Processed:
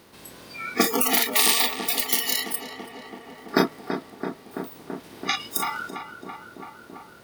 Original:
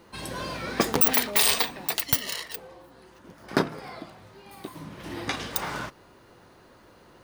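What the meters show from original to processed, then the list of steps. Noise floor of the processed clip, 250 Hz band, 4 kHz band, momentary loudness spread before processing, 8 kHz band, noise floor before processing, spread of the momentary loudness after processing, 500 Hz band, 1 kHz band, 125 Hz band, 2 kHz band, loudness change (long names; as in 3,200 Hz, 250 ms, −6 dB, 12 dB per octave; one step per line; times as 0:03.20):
−49 dBFS, +3.5 dB, +3.5 dB, 21 LU, +4.0 dB, −55 dBFS, 22 LU, +2.5 dB, +3.5 dB, −3.0 dB, +3.5 dB, +2.0 dB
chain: compressor on every frequency bin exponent 0.4
noise reduction from a noise print of the clip's start 25 dB
brickwall limiter −8 dBFS, peak gain reduction 6.5 dB
on a send: feedback echo with a low-pass in the loop 333 ms, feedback 82%, low-pass 2,300 Hz, level −8.5 dB
on the sum: level +3 dB
MP3 96 kbit/s 48,000 Hz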